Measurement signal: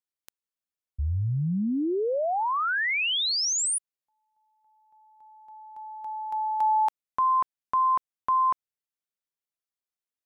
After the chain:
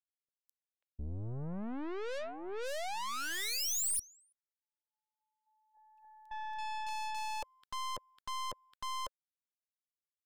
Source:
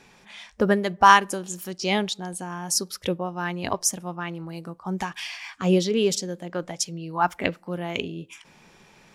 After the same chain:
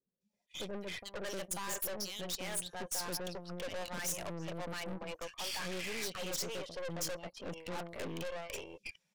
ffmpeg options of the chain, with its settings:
-filter_complex "[0:a]afftdn=nr=21:nf=-41,acrossover=split=1600[a][b];[b]dynaudnorm=f=130:g=5:m=14dB[c];[a][c]amix=inputs=2:normalize=0,agate=range=-12dB:threshold=-40dB:ratio=16:release=21:detection=rms,areverse,acompressor=threshold=-27dB:ratio=16:attack=5.1:release=211:knee=6:detection=rms,areverse,equalizer=f=550:w=2.2:g=14.5,acrossover=split=460|2900[d][e][f];[f]adelay=210[g];[e]adelay=540[h];[d][h][g]amix=inputs=3:normalize=0,aeval=exprs='(tanh(89.1*val(0)+0.8)-tanh(0.8))/89.1':c=same,highshelf=f=4.6k:g=8"

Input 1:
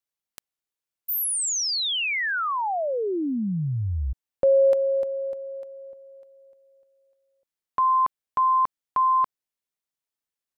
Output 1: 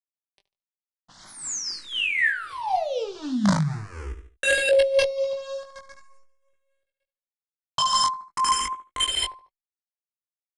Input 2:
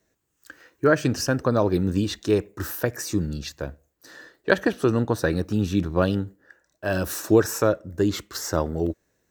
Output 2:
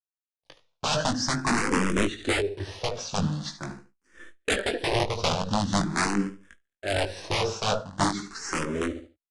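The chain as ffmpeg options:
-filter_complex "[0:a]dynaudnorm=f=140:g=9:m=3dB,flanger=delay=3.6:depth=2.5:regen=52:speed=1.8:shape=triangular,acrusher=bits=7:dc=4:mix=0:aa=0.000001,acrossover=split=6600[a][b];[b]acompressor=threshold=-50dB:ratio=4:attack=1:release=60[c];[a][c]amix=inputs=2:normalize=0,aecho=1:1:73|146|219:0.282|0.0874|0.0271,agate=range=-17dB:threshold=-45dB:ratio=3:release=186:detection=rms,aeval=exprs='(mod(7.94*val(0)+1,2)-1)/7.94':c=same,aresample=22050,aresample=44100,highshelf=f=7.6k:g=-5,tremolo=f=4:d=0.42,asplit=2[d][e];[e]adelay=20,volume=-5.5dB[f];[d][f]amix=inputs=2:normalize=0,asplit=2[g][h];[h]afreqshift=0.44[i];[g][i]amix=inputs=2:normalize=1,volume=4.5dB"

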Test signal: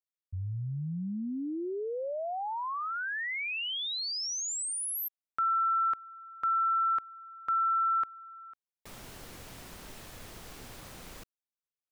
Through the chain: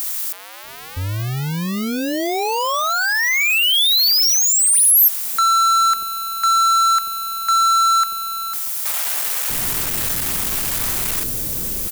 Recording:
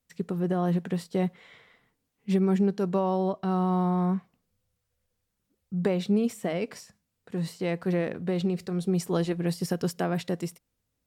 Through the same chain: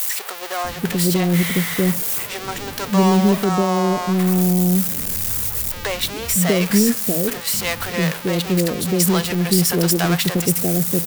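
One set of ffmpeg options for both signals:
-filter_complex "[0:a]aeval=exprs='val(0)+0.5*0.0266*sgn(val(0))':c=same,asplit=2[a][b];[b]adynamicsmooth=sensitivity=6.5:basefreq=1.5k,volume=2.5dB[c];[a][c]amix=inputs=2:normalize=0,crystalizer=i=5.5:c=0,acrossover=split=570[d][e];[d]adelay=640[f];[f][e]amix=inputs=2:normalize=0"

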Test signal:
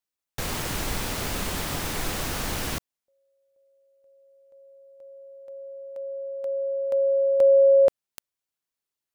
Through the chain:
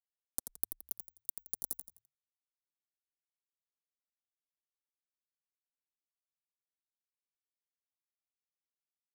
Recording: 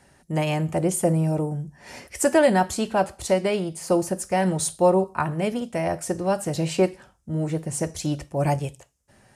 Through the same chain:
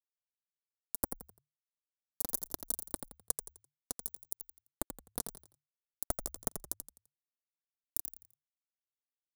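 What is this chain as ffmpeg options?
-filter_complex "[0:a]afftfilt=real='real(if(between(b,1,1008),(2*floor((b-1)/24)+1)*24-b,b),0)':imag='imag(if(between(b,1,1008),(2*floor((b-1)/24)+1)*24-b,b),0)*if(between(b,1,1008),-1,1)':win_size=2048:overlap=0.75,afftfilt=real='hypot(re,im)*cos(2*PI*random(0))':imag='hypot(re,im)*sin(2*PI*random(1))':win_size=512:overlap=0.75,lowshelf=f=210:g=-12,aeval=exprs='val(0)+0.00501*(sin(2*PI*50*n/s)+sin(2*PI*2*50*n/s)/2+sin(2*PI*3*50*n/s)/3+sin(2*PI*4*50*n/s)/4+sin(2*PI*5*50*n/s)/5)':c=same,acrossover=split=160[a][b];[b]acompressor=threshold=-43dB:ratio=3:attack=37:release=80:knee=2.83:detection=peak[c];[a][c]amix=inputs=2:normalize=0,highpass=97,acompressor=threshold=-40dB:ratio=12:attack=28:release=66:knee=1:detection=rms,aeval=exprs='abs(val(0))':c=same,acrusher=bits=4:mix=0:aa=0.000001,firequalizer=gain_entry='entry(320,0);entry(2600,-28);entry(3800,-13);entry(9400,6)':delay=0.05:min_phase=1,flanger=delay=2.3:depth=2.5:regen=13:speed=1.6:shape=triangular,asplit=2[d][e];[e]asplit=4[f][g][h][i];[f]adelay=85,afreqshift=-37,volume=-7.5dB[j];[g]adelay=170,afreqshift=-74,volume=-16.9dB[k];[h]adelay=255,afreqshift=-111,volume=-26.2dB[l];[i]adelay=340,afreqshift=-148,volume=-35.6dB[m];[j][k][l][m]amix=inputs=4:normalize=0[n];[d][n]amix=inputs=2:normalize=0,volume=18dB"

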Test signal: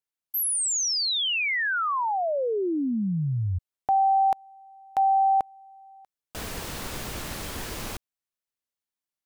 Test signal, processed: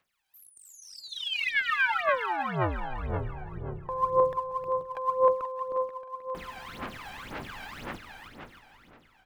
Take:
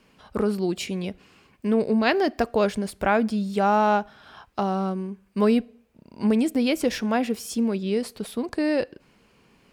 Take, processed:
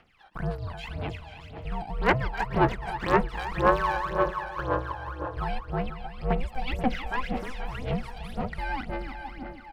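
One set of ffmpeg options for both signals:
-filter_complex "[0:a]acrossover=split=3200[a][b];[b]acompressor=threshold=-41dB:ratio=4:attack=1:release=60[c];[a][c]amix=inputs=2:normalize=0,acrossover=split=540 3300:gain=0.224 1 0.2[d][e][f];[d][e][f]amix=inputs=3:normalize=0,asplit=2[g][h];[h]adelay=483,lowpass=f=4.8k:p=1,volume=-9dB,asplit=2[i][j];[j]adelay=483,lowpass=f=4.8k:p=1,volume=0.29,asplit=2[k][l];[l]adelay=483,lowpass=f=4.8k:p=1,volume=0.29[m];[i][k][m]amix=inputs=3:normalize=0[n];[g][n]amix=inputs=2:normalize=0,aeval=exprs='val(0)*sin(2*PI*260*n/s)':c=same,equalizer=f=570:w=0.54:g=-3,aeval=exprs='0.15*(abs(mod(val(0)/0.15+3,4)-2)-1)':c=same,asplit=2[o][p];[p]aecho=0:1:312|624|936|1248|1560|1872:0.501|0.261|0.136|0.0705|0.0366|0.0191[q];[o][q]amix=inputs=2:normalize=0,acompressor=mode=upward:threshold=-55dB:ratio=2.5:attack=0.15:release=895:knee=2.83:detection=peak,aphaser=in_gain=1:out_gain=1:delay=1.3:decay=0.76:speed=1.9:type=sinusoidal,volume=-2dB"

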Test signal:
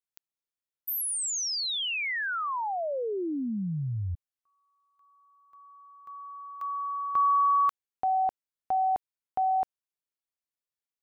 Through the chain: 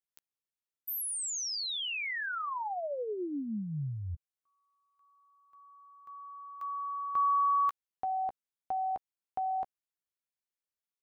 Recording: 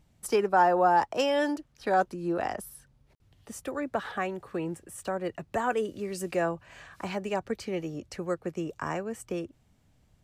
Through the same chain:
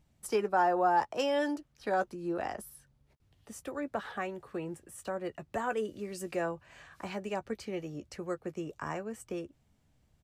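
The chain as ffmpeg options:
-filter_complex "[0:a]asplit=2[a][b];[b]adelay=14,volume=-12dB[c];[a][c]amix=inputs=2:normalize=0,volume=-5dB"

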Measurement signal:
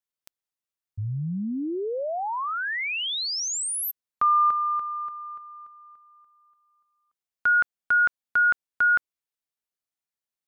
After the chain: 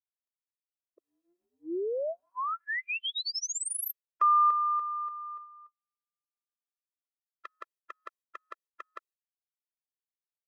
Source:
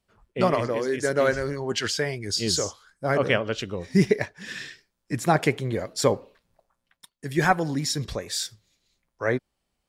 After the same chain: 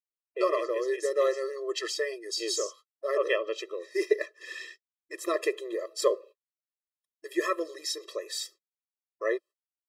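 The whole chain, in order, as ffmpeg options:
-af "agate=range=-45dB:threshold=-43dB:ratio=16:release=245:detection=peak,afftfilt=real='re*eq(mod(floor(b*sr/1024/340),2),1)':imag='im*eq(mod(floor(b*sr/1024/340),2),1)':win_size=1024:overlap=0.75,volume=-2.5dB"

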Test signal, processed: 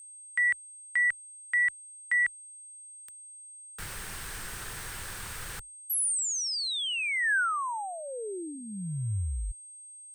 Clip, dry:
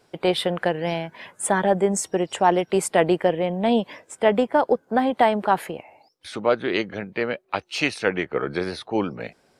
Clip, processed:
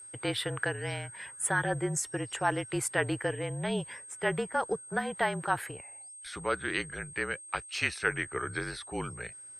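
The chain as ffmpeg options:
-af "afreqshift=-41,aeval=exprs='val(0)+0.00891*sin(2*PI*8400*n/s)':c=same,equalizer=f=100:t=o:w=0.67:g=4,equalizer=f=250:t=o:w=0.67:g=-10,equalizer=f=630:t=o:w=0.67:g=-7,equalizer=f=1.6k:t=o:w=0.67:g=8,equalizer=f=10k:t=o:w=0.67:g=5,volume=-8dB"

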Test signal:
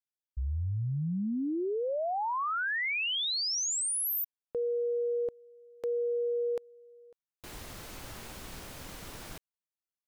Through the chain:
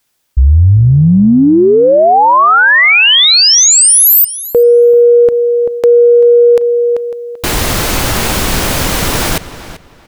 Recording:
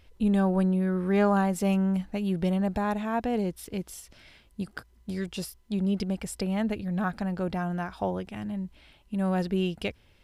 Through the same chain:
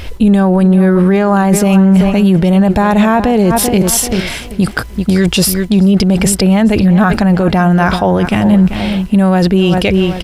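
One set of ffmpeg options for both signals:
-filter_complex "[0:a]asplit=2[a][b];[b]adelay=388,lowpass=f=4.6k:p=1,volume=-15dB,asplit=2[c][d];[d]adelay=388,lowpass=f=4.6k:p=1,volume=0.24,asplit=2[e][f];[f]adelay=388,lowpass=f=4.6k:p=1,volume=0.24[g];[a][c][e][g]amix=inputs=4:normalize=0,areverse,acompressor=threshold=-36dB:ratio=6:attack=4.5:release=86:knee=6:detection=rms,areverse,alimiter=level_in=33dB:limit=-1dB:release=50:level=0:latency=1,volume=-1dB"

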